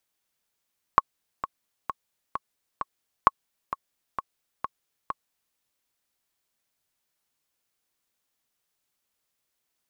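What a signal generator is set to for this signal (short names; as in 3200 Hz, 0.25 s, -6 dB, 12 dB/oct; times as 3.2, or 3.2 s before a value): metronome 131 bpm, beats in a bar 5, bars 2, 1100 Hz, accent 13.5 dB -2 dBFS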